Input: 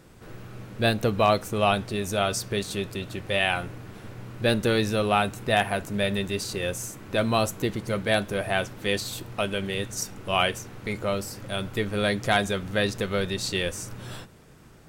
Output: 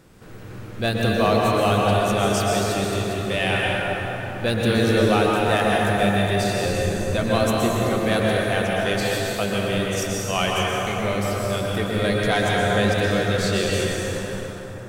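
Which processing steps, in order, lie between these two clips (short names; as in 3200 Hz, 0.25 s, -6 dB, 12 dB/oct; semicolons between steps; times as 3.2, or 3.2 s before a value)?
6.65–7.1 tilt -2.5 dB/oct; in parallel at -4 dB: soft clip -18 dBFS, distortion -14 dB; on the sum: plate-style reverb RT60 4.2 s, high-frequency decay 0.5×, pre-delay 0.105 s, DRR -4 dB; gain -4 dB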